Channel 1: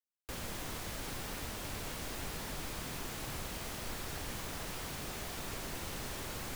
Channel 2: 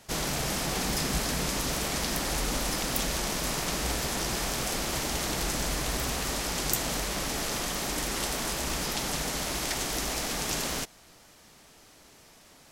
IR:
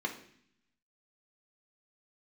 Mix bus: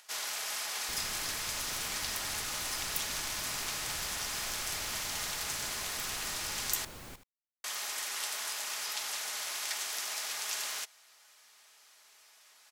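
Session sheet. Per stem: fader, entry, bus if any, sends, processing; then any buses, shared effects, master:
-6.0 dB, 0.60 s, no send, echo send -12 dB, dry
-4.0 dB, 0.00 s, muted 6.85–7.64, no send, no echo send, HPF 1100 Hz 12 dB/oct; comb 4.8 ms, depth 32%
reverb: off
echo: echo 77 ms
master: upward compressor, threshold -58 dBFS

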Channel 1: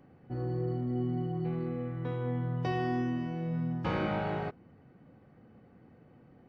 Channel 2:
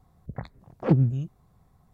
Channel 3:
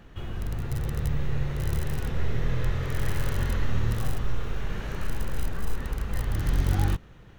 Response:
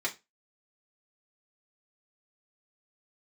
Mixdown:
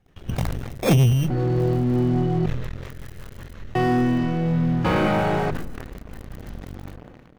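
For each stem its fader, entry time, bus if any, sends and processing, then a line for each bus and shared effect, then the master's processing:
+1.0 dB, 1.00 s, muted 2.46–3.75, no send, dry
-1.5 dB, 0.00 s, no send, low-pass opened by the level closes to 970 Hz, open at -17 dBFS; bell 1100 Hz -3.5 dB 0.78 oct; sample-and-hold 15×
-9.5 dB, 0.00 s, no send, compressor 10:1, threshold -33 dBFS, peak gain reduction 16.5 dB; rotary speaker horn 5.5 Hz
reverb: off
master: notches 50/100/150 Hz; sample leveller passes 3; sustainer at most 35 dB/s

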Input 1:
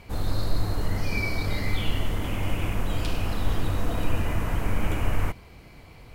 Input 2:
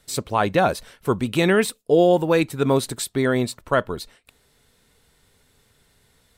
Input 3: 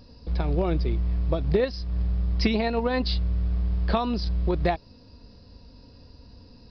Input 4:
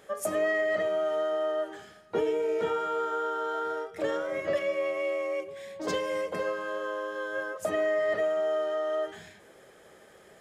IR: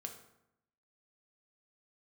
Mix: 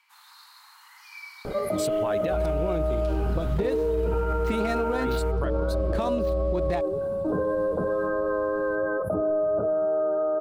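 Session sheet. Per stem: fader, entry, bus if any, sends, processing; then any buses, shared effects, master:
-11.0 dB, 0.00 s, no send, steep high-pass 880 Hz 72 dB/oct
-2.5 dB, 1.70 s, muted 2.46–5, no send, reverb removal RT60 1.6 s; compressor, threshold -24 dBFS, peak gain reduction 11.5 dB
0.0 dB, 2.05 s, no send, median filter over 9 samples
-2.5 dB, 1.45 s, no send, FFT band-reject 1600–9600 Hz; tilt -4 dB/oct; fast leveller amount 70%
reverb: off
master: limiter -17.5 dBFS, peak gain reduction 8.5 dB

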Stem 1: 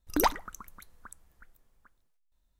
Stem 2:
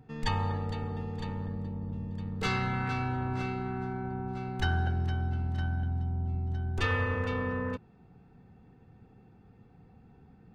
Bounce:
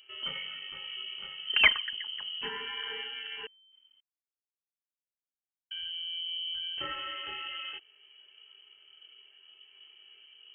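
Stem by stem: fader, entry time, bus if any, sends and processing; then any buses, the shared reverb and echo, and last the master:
+2.5 dB, 1.40 s, no send, comb 4.9 ms, depth 57%
+1.0 dB, 0.00 s, muted 3.47–5.71, no send, high shelf 2300 Hz +9 dB; compressor 2:1, threshold -40 dBFS, peak gain reduction 10 dB; chorus voices 4, 0.37 Hz, delay 24 ms, depth 3.7 ms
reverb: off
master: inverted band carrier 3100 Hz

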